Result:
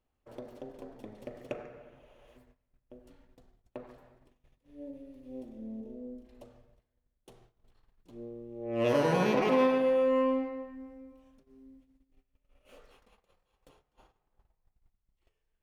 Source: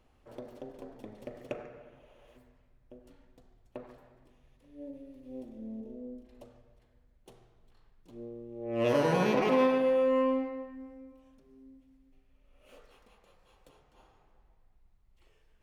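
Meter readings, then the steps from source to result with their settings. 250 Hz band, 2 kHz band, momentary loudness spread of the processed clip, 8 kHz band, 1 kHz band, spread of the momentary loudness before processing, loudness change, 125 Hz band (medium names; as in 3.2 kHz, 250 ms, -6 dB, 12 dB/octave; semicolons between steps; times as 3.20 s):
0.0 dB, 0.0 dB, 23 LU, no reading, 0.0 dB, 23 LU, +0.5 dB, 0.0 dB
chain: gate -60 dBFS, range -15 dB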